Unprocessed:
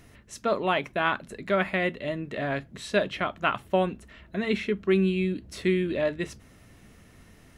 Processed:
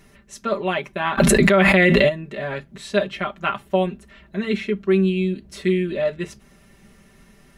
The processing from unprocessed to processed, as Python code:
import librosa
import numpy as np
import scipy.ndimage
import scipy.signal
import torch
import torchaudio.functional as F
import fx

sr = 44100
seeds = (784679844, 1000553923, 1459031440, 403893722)

y = x + 0.84 * np.pad(x, (int(5.1 * sr / 1000.0), 0))[:len(x)]
y = fx.env_flatten(y, sr, amount_pct=100, at=(1.17, 2.08), fade=0.02)